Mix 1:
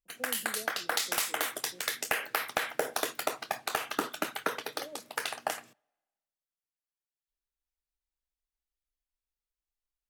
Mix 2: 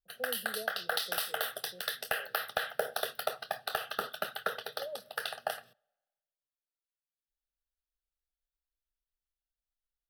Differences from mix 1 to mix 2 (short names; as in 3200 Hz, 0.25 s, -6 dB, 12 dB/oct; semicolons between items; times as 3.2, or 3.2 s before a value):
speech +6.0 dB; master: add fixed phaser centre 1500 Hz, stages 8